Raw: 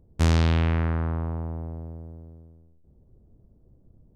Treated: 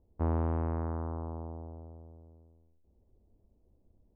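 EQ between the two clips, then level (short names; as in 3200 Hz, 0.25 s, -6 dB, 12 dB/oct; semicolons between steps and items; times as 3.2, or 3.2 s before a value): dynamic EQ 310 Hz, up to +4 dB, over -37 dBFS, Q 0.88; ladder low-pass 1200 Hz, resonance 35%; bell 140 Hz -13 dB 0.5 oct; -1.5 dB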